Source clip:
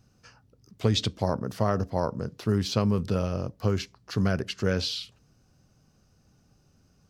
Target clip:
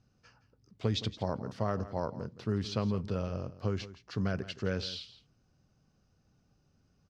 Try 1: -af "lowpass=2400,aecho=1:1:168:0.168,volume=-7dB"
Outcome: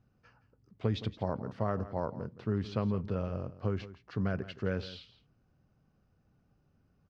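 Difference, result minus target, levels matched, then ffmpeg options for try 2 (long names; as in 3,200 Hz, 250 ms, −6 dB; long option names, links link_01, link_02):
4,000 Hz band −7.5 dB
-af "lowpass=5500,aecho=1:1:168:0.168,volume=-7dB"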